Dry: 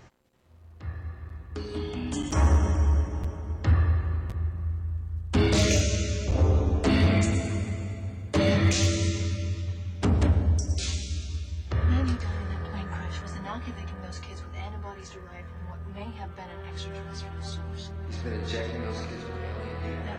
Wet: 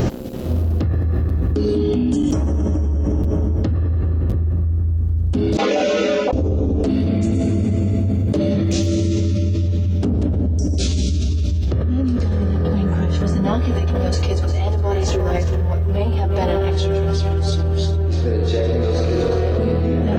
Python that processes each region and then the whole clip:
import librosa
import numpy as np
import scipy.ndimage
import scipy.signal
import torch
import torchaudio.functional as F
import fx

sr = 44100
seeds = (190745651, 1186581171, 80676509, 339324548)

y = fx.chain(x, sr, fx.ladder_bandpass(hz=980.0, resonance_pct=55),
    fx.comb(ms=4.0, depth=0.96), at=(5.57, 6.33))
y = fx.chain(y, sr, fx.peak_eq(hz=210.0, db=-14.0, octaves=0.65),
    fx.echo_multitap(ms=(352, 409), db=(-11.0, -14.5)), at=(13.54, 19.59))
y = fx.graphic_eq_10(y, sr, hz=(250, 500, 1000, 2000, 4000, 8000), db=(6, 3, -9, -11, -3, -9))
y = fx.env_flatten(y, sr, amount_pct=100)
y = y * 10.0 ** (-1.5 / 20.0)